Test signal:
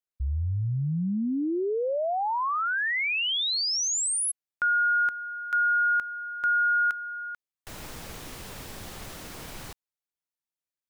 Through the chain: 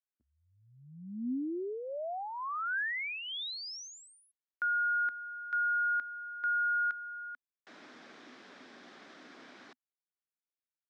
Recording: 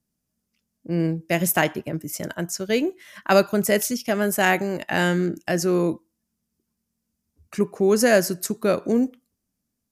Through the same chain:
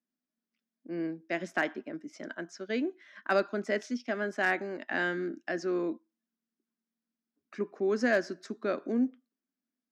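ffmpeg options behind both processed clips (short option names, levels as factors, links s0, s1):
-af "highpass=f=250:w=0.5412,highpass=f=250:w=1.3066,equalizer=f=250:t=q:w=4:g=6,equalizer=f=490:t=q:w=4:g=-5,equalizer=f=900:t=q:w=4:g=-5,equalizer=f=1600:t=q:w=4:g=4,equalizer=f=2800:t=q:w=4:g=-6,equalizer=f=4400:t=q:w=4:g=-4,lowpass=f=4700:w=0.5412,lowpass=f=4700:w=1.3066,volume=2.66,asoftclip=hard,volume=0.376,volume=0.376"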